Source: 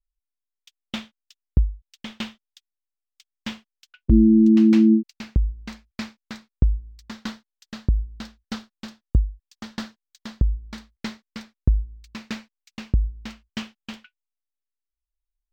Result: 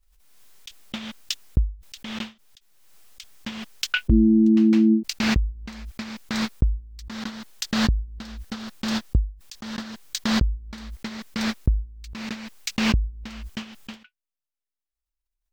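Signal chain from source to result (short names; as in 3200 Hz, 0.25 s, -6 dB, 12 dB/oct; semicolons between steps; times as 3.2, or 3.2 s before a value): backwards sustainer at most 37 dB/s; gain -2.5 dB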